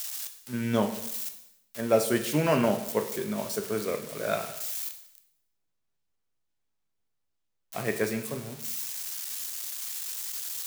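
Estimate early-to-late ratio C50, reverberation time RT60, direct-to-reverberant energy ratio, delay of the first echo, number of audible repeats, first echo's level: 9.5 dB, 0.80 s, 6.0 dB, no echo audible, no echo audible, no echo audible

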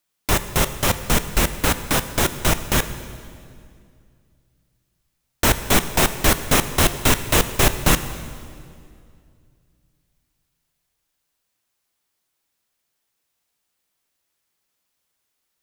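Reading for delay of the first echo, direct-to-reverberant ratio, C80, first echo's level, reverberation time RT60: no echo audible, 10.5 dB, 13.0 dB, no echo audible, 2.3 s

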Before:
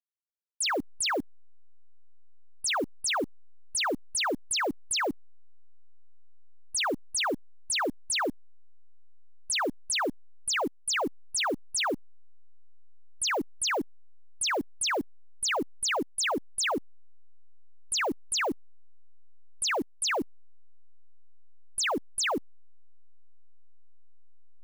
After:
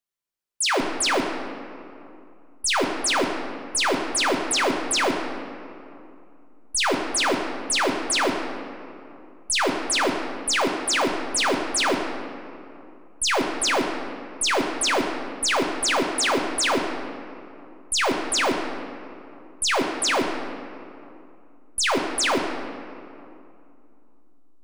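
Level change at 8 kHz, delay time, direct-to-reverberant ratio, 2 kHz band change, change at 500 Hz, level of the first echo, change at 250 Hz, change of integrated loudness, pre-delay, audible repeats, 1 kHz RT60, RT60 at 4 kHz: +6.0 dB, no echo audible, 1.0 dB, +7.0 dB, +8.0 dB, no echo audible, +8.0 dB, +6.5 dB, 5 ms, no echo audible, 2.6 s, 1.4 s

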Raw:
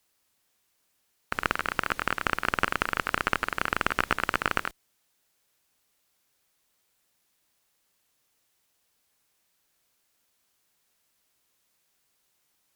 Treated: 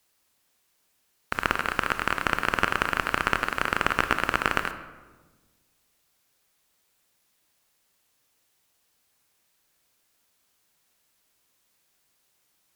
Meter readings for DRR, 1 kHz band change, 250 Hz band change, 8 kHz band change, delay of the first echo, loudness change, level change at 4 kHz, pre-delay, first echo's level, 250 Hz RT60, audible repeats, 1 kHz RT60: 9.0 dB, +2.5 dB, +3.0 dB, +2.5 dB, no echo audible, +2.5 dB, +2.5 dB, 23 ms, no echo audible, 1.7 s, no echo audible, 1.2 s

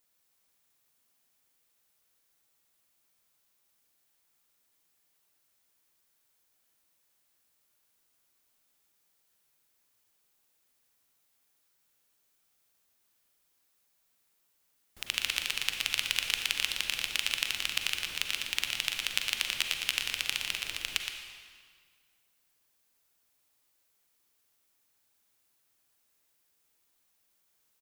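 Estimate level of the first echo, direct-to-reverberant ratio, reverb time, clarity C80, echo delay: −7.0 dB, 2.0 dB, 1.9 s, 3.5 dB, 118 ms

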